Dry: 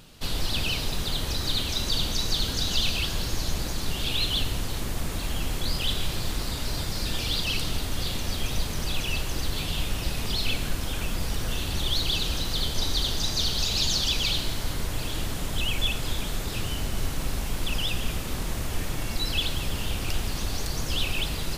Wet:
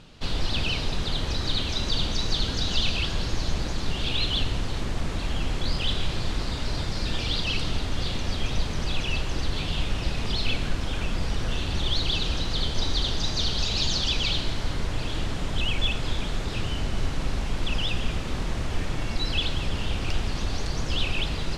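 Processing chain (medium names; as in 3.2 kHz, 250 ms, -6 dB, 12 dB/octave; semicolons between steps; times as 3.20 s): distance through air 97 m; trim +2 dB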